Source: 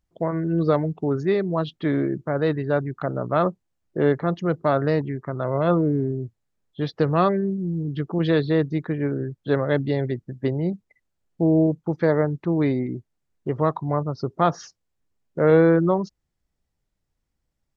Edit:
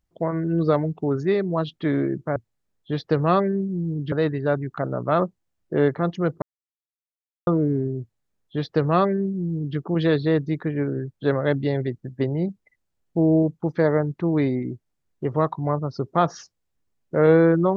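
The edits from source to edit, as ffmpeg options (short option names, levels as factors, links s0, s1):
-filter_complex "[0:a]asplit=5[s0][s1][s2][s3][s4];[s0]atrim=end=2.362[s5];[s1]atrim=start=6.248:end=8.012[s6];[s2]atrim=start=2.358:end=4.66,asetpts=PTS-STARTPTS,afade=t=out:st=2.298:d=0.004:c=hsin[s7];[s3]atrim=start=4.66:end=5.71,asetpts=PTS-STARTPTS,volume=0[s8];[s4]atrim=start=5.71,asetpts=PTS-STARTPTS,afade=t=in:d=0.004:c=hsin[s9];[s5][s6]acrossfade=d=0.004:c1=hsin:c2=hsin[s10];[s7][s8][s9]concat=n=3:v=0:a=1[s11];[s10][s11]acrossfade=d=0.004:c1=hsin:c2=hsin"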